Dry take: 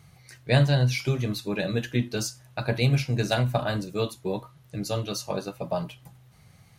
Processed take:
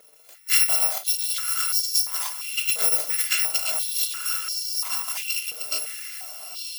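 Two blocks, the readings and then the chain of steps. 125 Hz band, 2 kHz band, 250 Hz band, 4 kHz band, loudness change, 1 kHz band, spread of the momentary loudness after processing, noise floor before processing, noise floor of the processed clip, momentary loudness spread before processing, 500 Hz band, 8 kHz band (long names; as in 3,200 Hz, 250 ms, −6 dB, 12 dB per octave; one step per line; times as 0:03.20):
below −40 dB, +2.5 dB, below −30 dB, +8.0 dB, +5.0 dB, −2.5 dB, 11 LU, −56 dBFS, −53 dBFS, 11 LU, −14.0 dB, +16.0 dB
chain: samples in bit-reversed order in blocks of 256 samples
feedback delay with all-pass diffusion 959 ms, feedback 52%, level −7.5 dB
high-pass on a step sequencer 2.9 Hz 510–5,000 Hz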